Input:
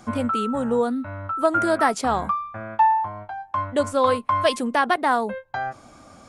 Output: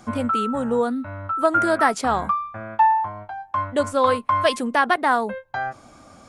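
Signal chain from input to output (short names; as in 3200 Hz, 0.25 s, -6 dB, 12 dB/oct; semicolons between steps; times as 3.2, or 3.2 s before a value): dynamic EQ 1600 Hz, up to +3 dB, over -31 dBFS, Q 1.2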